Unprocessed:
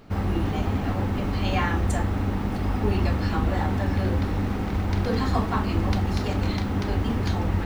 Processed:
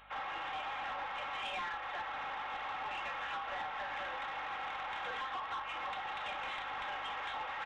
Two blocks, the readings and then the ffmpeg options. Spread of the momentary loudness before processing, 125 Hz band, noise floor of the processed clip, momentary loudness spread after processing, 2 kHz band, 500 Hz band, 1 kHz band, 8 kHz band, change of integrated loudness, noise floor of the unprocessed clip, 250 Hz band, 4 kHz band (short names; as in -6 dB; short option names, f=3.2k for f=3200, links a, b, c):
3 LU, under -40 dB, -42 dBFS, 1 LU, -4.5 dB, -18.0 dB, -6.0 dB, under -15 dB, -14.0 dB, -28 dBFS, -34.5 dB, -6.0 dB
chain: -af "highpass=f=790:w=0.5412,highpass=f=790:w=1.3066,aecho=1:1:3.7:0.5,acompressor=threshold=-33dB:ratio=4,aresample=8000,volume=34.5dB,asoftclip=hard,volume=-34.5dB,aresample=44100,aeval=exprs='val(0)+0.000501*(sin(2*PI*50*n/s)+sin(2*PI*2*50*n/s)/2+sin(2*PI*3*50*n/s)/3+sin(2*PI*4*50*n/s)/4+sin(2*PI*5*50*n/s)/5)':c=same,asoftclip=type=tanh:threshold=-32.5dB"